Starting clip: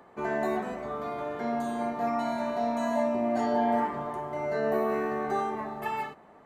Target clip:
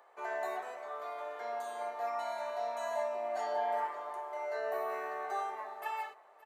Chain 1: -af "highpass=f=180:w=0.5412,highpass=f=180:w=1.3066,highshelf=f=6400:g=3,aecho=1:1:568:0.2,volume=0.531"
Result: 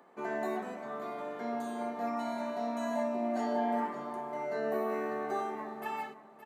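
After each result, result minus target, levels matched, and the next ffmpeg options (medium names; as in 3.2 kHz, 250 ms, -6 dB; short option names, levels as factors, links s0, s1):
250 Hz band +20.0 dB; echo-to-direct +6.5 dB
-af "highpass=f=520:w=0.5412,highpass=f=520:w=1.3066,highshelf=f=6400:g=3,aecho=1:1:568:0.2,volume=0.531"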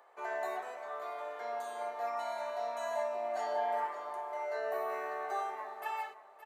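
echo-to-direct +6.5 dB
-af "highpass=f=520:w=0.5412,highpass=f=520:w=1.3066,highshelf=f=6400:g=3,aecho=1:1:568:0.0944,volume=0.531"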